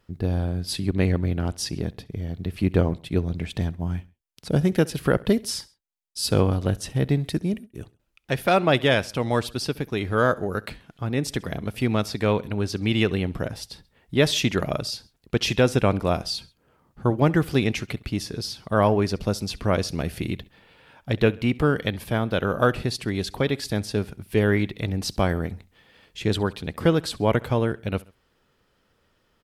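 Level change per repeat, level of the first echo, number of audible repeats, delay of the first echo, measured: -5.5 dB, -23.0 dB, 2, 67 ms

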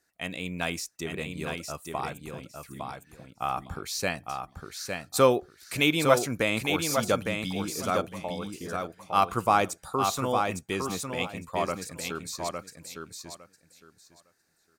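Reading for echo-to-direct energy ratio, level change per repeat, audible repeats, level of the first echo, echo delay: -5.0 dB, -15.0 dB, 3, -5.0 dB, 0.858 s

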